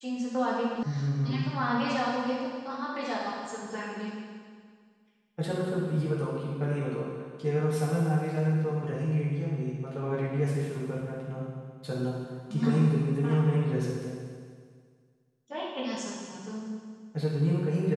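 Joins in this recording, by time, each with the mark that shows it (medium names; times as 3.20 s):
0.83 s: sound stops dead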